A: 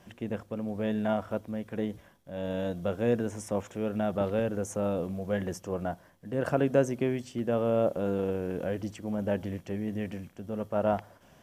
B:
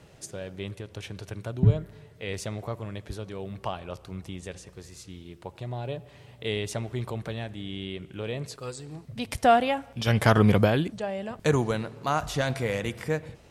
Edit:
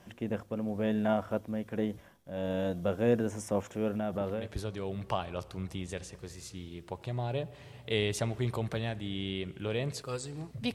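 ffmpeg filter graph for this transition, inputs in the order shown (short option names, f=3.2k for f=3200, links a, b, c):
-filter_complex "[0:a]asettb=1/sr,asplit=3[a][b][c];[a]atrim=end=3.914[d];[b]atrim=start=3.91:end=4.5,asetpts=PTS-STARTPTS,afade=t=in:d=0.004:c=qsin,afade=t=out:st=0.586:d=0.004:c=qsin,acompressor=threshold=-31dB:ratio=2:attack=3.2:release=140:knee=1:detection=peak[e];[c]atrim=start=4.496[f];[d][e]acrossfade=d=0.004:c1=hsin:c2=qsin[g];[g][f]acrossfade=d=0.004:c1=qsin:c2=hsin,apad=whole_dur=10.74,atrim=end=10.74,atrim=end=4.5,asetpts=PTS-STARTPTS[h];[1:a]atrim=start=2.86:end=9.28,asetpts=PTS-STARTPTS[i];[h][i]acrossfade=d=0.18:c1=tri:c2=tri"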